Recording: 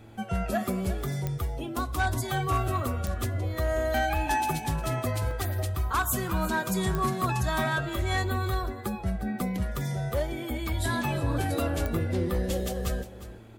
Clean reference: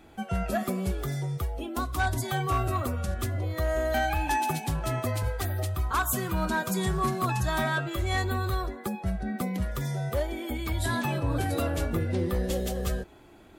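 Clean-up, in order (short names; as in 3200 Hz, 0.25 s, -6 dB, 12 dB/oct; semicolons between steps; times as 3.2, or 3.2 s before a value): de-click; de-hum 112.3 Hz, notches 5; interpolate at 0.85/3.24/5.31, 1.2 ms; inverse comb 0.355 s -14.5 dB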